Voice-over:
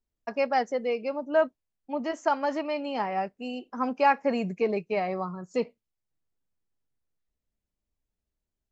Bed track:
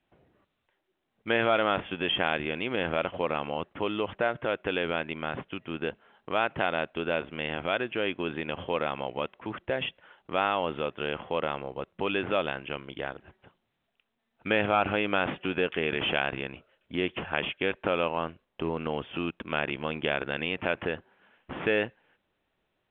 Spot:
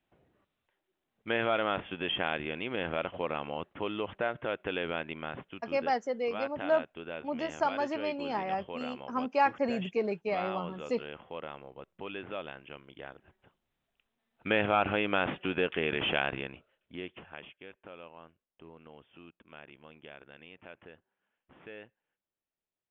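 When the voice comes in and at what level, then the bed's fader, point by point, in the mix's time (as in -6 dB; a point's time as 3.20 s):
5.35 s, -4.0 dB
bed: 5.14 s -4.5 dB
5.92 s -11.5 dB
12.90 s -11.5 dB
14.21 s -2 dB
16.34 s -2 dB
17.66 s -21 dB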